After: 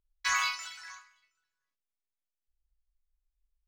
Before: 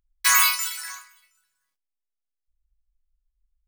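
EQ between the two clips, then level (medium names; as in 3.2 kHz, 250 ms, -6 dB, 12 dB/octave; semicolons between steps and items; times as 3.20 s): distance through air 230 m; peaking EQ 400 Hz +2 dB 0.39 oct; peaking EQ 6.7 kHz +10.5 dB 0.96 oct; -6.5 dB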